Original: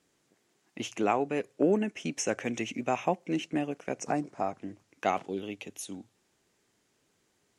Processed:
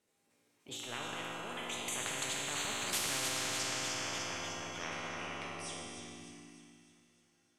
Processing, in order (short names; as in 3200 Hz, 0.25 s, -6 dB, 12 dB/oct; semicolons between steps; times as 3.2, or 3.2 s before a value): Doppler pass-by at 3.04, 47 m/s, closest 4.3 m; transient shaper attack -9 dB, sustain +7 dB; split-band echo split 1300 Hz, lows 0.18 s, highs 0.301 s, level -9 dB; reverb RT60 2.2 s, pre-delay 4 ms, DRR -3.5 dB; spectral compressor 10:1